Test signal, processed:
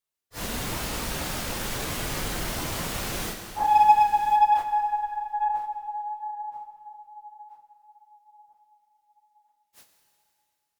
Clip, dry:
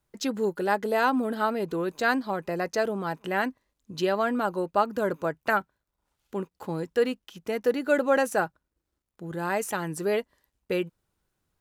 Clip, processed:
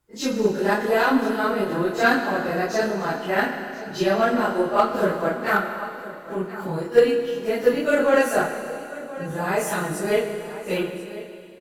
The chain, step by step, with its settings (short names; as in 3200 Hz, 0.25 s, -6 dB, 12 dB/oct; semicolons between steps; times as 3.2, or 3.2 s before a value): phase scrambler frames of 0.1 s; echo 1.032 s -16 dB; added harmonics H 3 -22 dB, 8 -37 dB, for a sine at -10.5 dBFS; dynamic EQ 890 Hz, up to -4 dB, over -36 dBFS, Q 3.2; Schroeder reverb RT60 2.6 s, combs from 26 ms, DRR 6 dB; gain +6.5 dB